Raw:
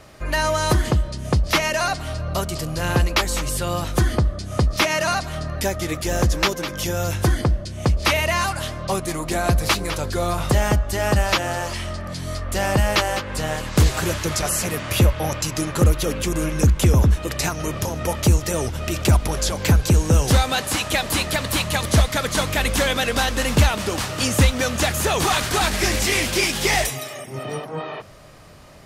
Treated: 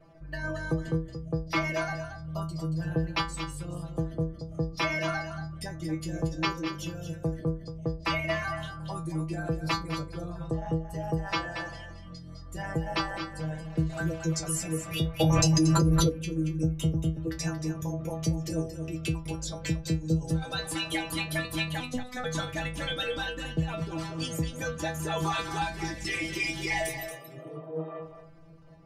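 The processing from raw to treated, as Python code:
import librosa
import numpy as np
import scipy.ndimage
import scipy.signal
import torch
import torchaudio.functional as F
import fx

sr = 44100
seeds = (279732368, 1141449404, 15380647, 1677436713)

p1 = fx.envelope_sharpen(x, sr, power=2.0)
p2 = fx.lowpass(p1, sr, hz=fx.line((10.29, 9800.0), (10.71, 5800.0)), slope=24, at=(10.29, 10.71), fade=0.02)
p3 = fx.rider(p2, sr, range_db=3, speed_s=2.0)
p4 = p2 + F.gain(torch.from_numpy(p3), 0.0).numpy()
p5 = fx.stiff_resonator(p4, sr, f0_hz=160.0, decay_s=0.32, stiffness=0.002)
p6 = fx.robotise(p5, sr, hz=250.0, at=(21.8, 22.24))
p7 = p6 + 10.0 ** (-9.0 / 20.0) * np.pad(p6, (int(229 * sr / 1000.0), 0))[:len(p6)]
p8 = fx.env_flatten(p7, sr, amount_pct=100, at=(15.19, 16.08), fade=0.02)
y = F.gain(torch.from_numpy(p8), -3.5).numpy()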